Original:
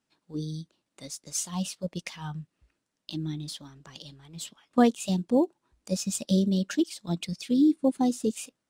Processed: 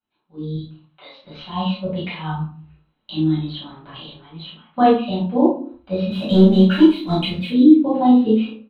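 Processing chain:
Chebyshev low-pass with heavy ripple 4,100 Hz, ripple 6 dB
automatic gain control gain up to 14 dB
0:00.55–0:01.18: high-pass filter 670 Hz 12 dB per octave
0:06.11–0:07.49: leveller curve on the samples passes 1
double-tracking delay 32 ms −3.5 dB
convolution reverb RT60 0.50 s, pre-delay 5 ms, DRR −8.5 dB
level −12 dB

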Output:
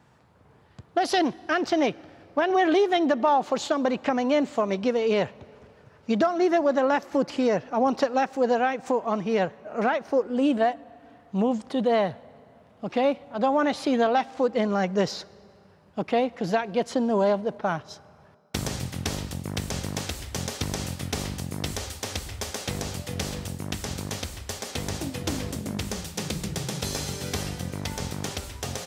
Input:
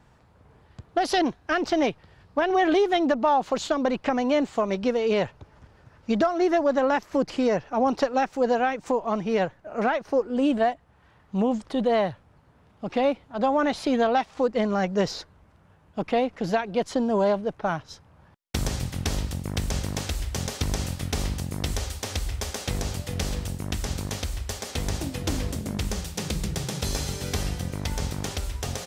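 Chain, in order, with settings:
high-pass filter 100 Hz 12 dB per octave
on a send: convolution reverb RT60 2.7 s, pre-delay 3 ms, DRR 22 dB

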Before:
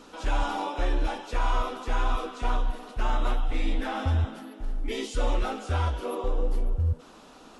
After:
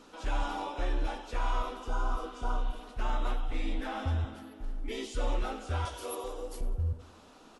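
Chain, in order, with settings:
0:01.84–0:02.81: healed spectral selection 1,600–4,500 Hz before
0:05.85–0:06.61: bass and treble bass −13 dB, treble +14 dB
on a send: repeating echo 91 ms, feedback 42%, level −16.5 dB
on the sum: level −5.5 dB

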